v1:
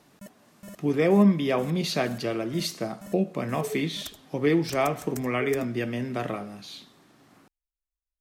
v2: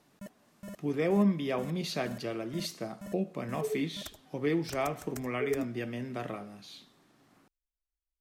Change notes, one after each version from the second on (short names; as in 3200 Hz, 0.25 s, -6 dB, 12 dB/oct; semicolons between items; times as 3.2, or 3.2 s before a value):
speech -7.0 dB; background: add high shelf 3900 Hz -6.5 dB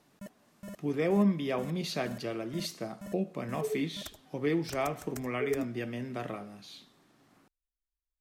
none